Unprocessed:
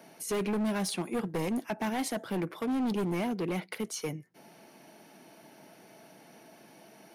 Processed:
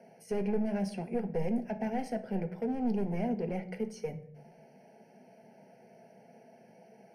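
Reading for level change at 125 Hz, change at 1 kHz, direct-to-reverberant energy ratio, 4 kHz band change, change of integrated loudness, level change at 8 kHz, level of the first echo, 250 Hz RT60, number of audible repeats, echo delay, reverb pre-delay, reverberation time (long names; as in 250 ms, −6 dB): −0.5 dB, −3.5 dB, 6.5 dB, −14.5 dB, −2.0 dB, below −15 dB, no echo audible, 0.90 s, no echo audible, no echo audible, 3 ms, 0.70 s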